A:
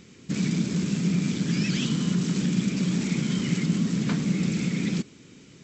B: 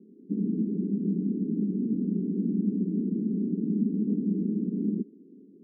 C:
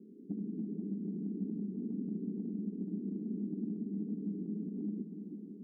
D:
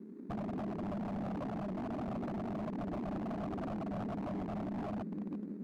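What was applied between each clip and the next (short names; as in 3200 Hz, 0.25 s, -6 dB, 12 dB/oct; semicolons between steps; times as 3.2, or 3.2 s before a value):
Chebyshev band-pass 200–420 Hz, order 3; gain +1.5 dB
on a send at -17 dB: reverb RT60 0.55 s, pre-delay 4 ms; on the sum: compressor, threshold -35 dBFS, peak gain reduction 14 dB; multi-head echo 0.166 s, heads second and third, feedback 70%, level -11 dB; gain -1.5 dB
median filter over 41 samples; wavefolder -38.5 dBFS; Doppler distortion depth 0.3 ms; gain +5 dB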